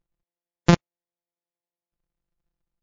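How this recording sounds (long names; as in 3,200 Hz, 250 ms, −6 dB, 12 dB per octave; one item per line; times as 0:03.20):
a buzz of ramps at a fixed pitch in blocks of 256 samples
tremolo saw down 11 Hz, depth 40%
MP3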